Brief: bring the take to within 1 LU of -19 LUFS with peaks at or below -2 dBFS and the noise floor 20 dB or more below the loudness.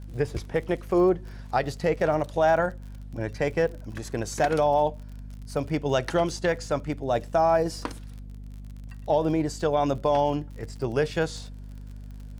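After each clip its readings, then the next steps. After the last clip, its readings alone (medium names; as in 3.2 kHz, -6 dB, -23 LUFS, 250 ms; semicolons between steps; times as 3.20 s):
tick rate 42 per s; hum 50 Hz; highest harmonic 250 Hz; hum level -37 dBFS; loudness -26.0 LUFS; peak level -10.5 dBFS; loudness target -19.0 LUFS
-> de-click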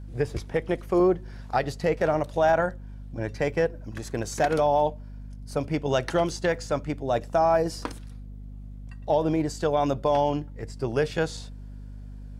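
tick rate 0.081 per s; hum 50 Hz; highest harmonic 250 Hz; hum level -37 dBFS
-> de-hum 50 Hz, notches 5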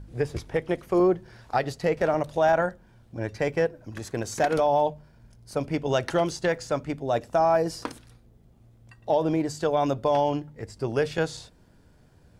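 hum not found; loudness -26.0 LUFS; peak level -10.5 dBFS; loudness target -19.0 LUFS
-> trim +7 dB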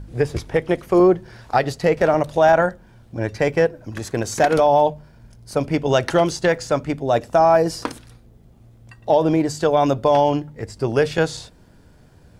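loudness -19.0 LUFS; peak level -3.5 dBFS; noise floor -50 dBFS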